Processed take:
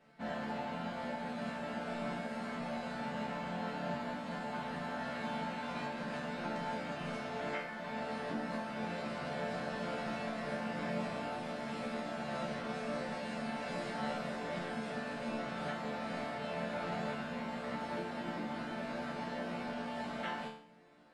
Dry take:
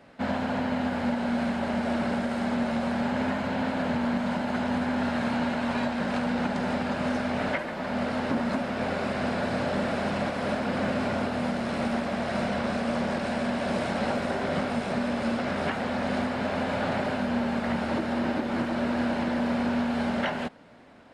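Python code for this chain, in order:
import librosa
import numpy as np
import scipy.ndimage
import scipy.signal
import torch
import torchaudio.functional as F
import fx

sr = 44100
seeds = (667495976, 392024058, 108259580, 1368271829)

y = fx.resonator_bank(x, sr, root=50, chord='minor', decay_s=0.52)
y = y * 10.0 ** (8.0 / 20.0)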